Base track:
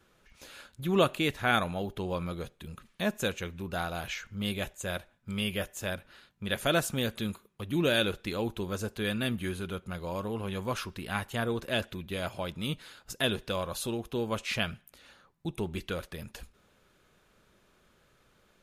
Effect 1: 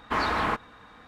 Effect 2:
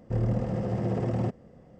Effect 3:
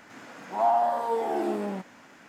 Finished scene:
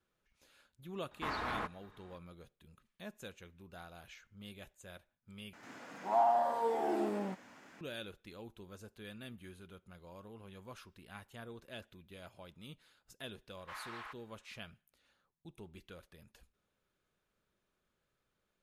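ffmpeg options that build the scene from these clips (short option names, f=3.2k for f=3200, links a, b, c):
-filter_complex "[1:a]asplit=2[a][b];[0:a]volume=-18dB[c];[b]highpass=1.2k[d];[c]asplit=2[e][f];[e]atrim=end=5.534[g];[3:a]atrim=end=2.28,asetpts=PTS-STARTPTS,volume=-6dB[h];[f]atrim=start=7.806[i];[a]atrim=end=1.07,asetpts=PTS-STARTPTS,volume=-12.5dB,afade=t=in:d=0.004:c=hsin,afade=t=out:st=1.066:d=0.004:c=hsin,adelay=1110[j];[d]atrim=end=1.07,asetpts=PTS-STARTPTS,volume=-17.5dB,afade=t=in:d=0.004:c=hsin,afade=t=out:st=1.066:d=0.004:c=hsin,adelay=13570[k];[g][h]acrossfade=d=0.004:c1=hsin:c2=hsin[l];[l][i]acrossfade=d=0.004:c1=hsin:c2=hsin[m];[m][j][k]amix=inputs=3:normalize=0"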